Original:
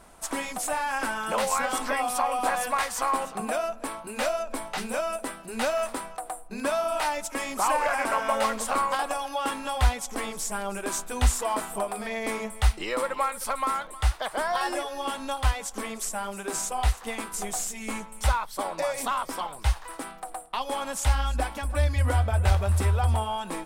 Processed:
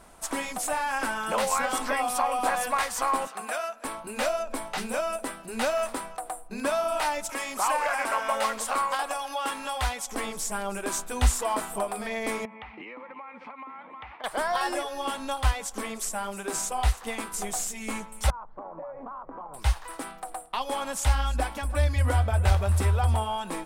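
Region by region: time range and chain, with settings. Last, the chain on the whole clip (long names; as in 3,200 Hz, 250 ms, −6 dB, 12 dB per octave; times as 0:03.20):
0:03.27–0:03.85: high-pass filter 1,000 Hz 6 dB per octave + parametric band 1,600 Hz +4 dB 0.81 octaves
0:07.29–0:10.13: low-shelf EQ 370 Hz −9.5 dB + upward compression, threshold −31 dBFS
0:12.45–0:14.24: loudspeaker in its box 200–2,400 Hz, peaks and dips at 250 Hz +9 dB, 370 Hz −5 dB, 610 Hz −6 dB, 900 Hz +5 dB, 1,500 Hz −7 dB, 2,300 Hz +8 dB + downward compressor 16 to 1, threshold −38 dBFS
0:18.30–0:19.54: low-pass filter 1,200 Hz 24 dB per octave + downward compressor 4 to 1, threshold −37 dBFS
whole clip: no processing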